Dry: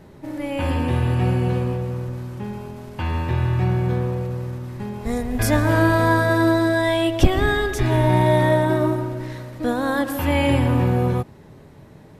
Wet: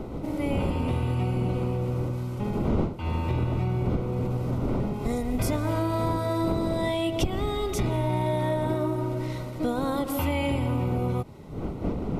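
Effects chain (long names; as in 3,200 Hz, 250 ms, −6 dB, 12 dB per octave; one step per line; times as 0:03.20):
wind on the microphone 300 Hz −23 dBFS
downward compressor 6 to 1, threshold −23 dBFS, peak gain reduction 18.5 dB
Butterworth band-reject 1,700 Hz, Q 4.4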